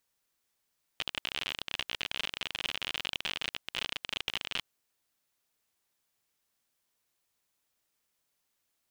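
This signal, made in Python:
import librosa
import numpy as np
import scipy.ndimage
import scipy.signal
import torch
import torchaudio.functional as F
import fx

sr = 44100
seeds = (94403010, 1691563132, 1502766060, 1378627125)

y = fx.geiger_clicks(sr, seeds[0], length_s=3.64, per_s=53.0, level_db=-17.0)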